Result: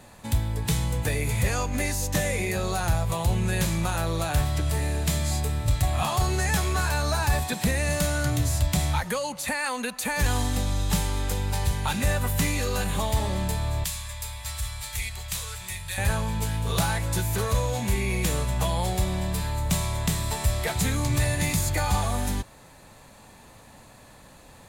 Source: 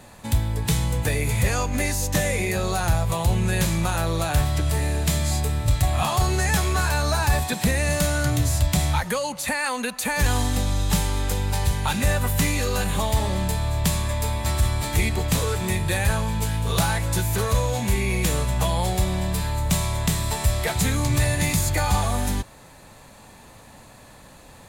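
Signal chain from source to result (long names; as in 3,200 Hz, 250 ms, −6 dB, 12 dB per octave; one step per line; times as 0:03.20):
0:13.84–0:15.98: guitar amp tone stack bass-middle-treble 10-0-10
level −3 dB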